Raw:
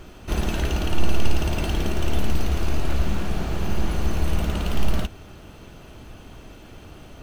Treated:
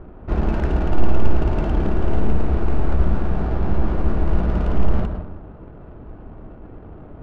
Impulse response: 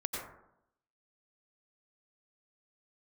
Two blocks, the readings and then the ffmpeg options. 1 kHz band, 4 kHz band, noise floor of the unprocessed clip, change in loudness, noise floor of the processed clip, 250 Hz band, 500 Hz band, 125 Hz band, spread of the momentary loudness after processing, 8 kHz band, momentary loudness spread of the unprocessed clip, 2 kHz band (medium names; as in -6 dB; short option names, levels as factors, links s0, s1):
+3.0 dB, -12.0 dB, -44 dBFS, +3.5 dB, -41 dBFS, +4.5 dB, +4.5 dB, +4.0 dB, 19 LU, under -15 dB, 19 LU, -2.5 dB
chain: -filter_complex "[0:a]lowpass=1500,asplit=2[s0][s1];[1:a]atrim=start_sample=2205,asetrate=37485,aresample=44100[s2];[s1][s2]afir=irnorm=-1:irlink=0,volume=0.531[s3];[s0][s3]amix=inputs=2:normalize=0,adynamicsmooth=sensitivity=5:basefreq=1100"